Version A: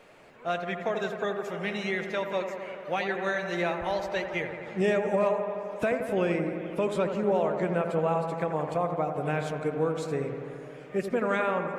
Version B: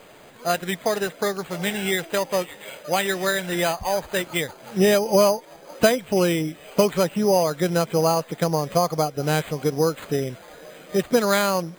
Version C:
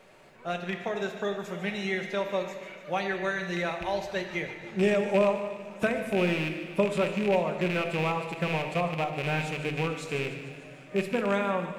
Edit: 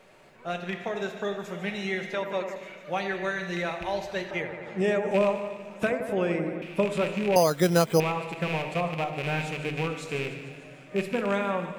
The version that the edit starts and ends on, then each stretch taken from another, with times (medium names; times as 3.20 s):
C
2.14–2.56 s: from A
4.31–5.11 s: from A
5.90–6.62 s: from A
7.36–8.00 s: from B